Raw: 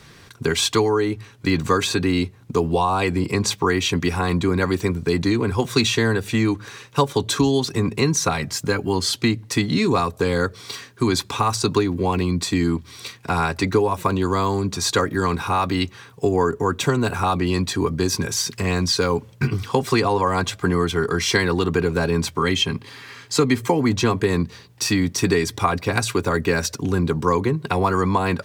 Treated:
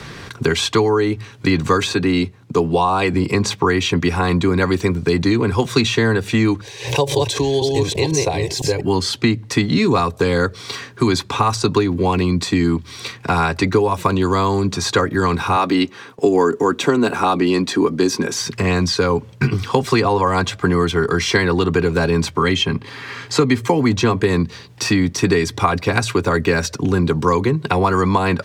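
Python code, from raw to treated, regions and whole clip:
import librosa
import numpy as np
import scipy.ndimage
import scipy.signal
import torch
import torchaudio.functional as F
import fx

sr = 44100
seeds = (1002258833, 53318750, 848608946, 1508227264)

y = fx.chain(x, sr, fx.highpass(hz=110.0, slope=12),
    fx.band_widen(depth_pct=40), at=(1.93, 3.14))
y = fx.chain(y, sr, fx.reverse_delay(ms=501, wet_db=-2.0),
    fx.fixed_phaser(hz=540.0, stages=4),
    fx.pre_swell(db_per_s=110.0), at=(6.61, 8.81))
y = fx.chain(y, sr, fx.highpass_res(hz=260.0, q=1.5),
    fx.gate_hold(open_db=-35.0, close_db=-38.0, hold_ms=71.0, range_db=-21, attack_ms=1.4, release_ms=100.0), at=(15.56, 18.4))
y = fx.high_shelf(y, sr, hz=9500.0, db=-12.0)
y = fx.band_squash(y, sr, depth_pct=40)
y = y * 10.0 ** (3.5 / 20.0)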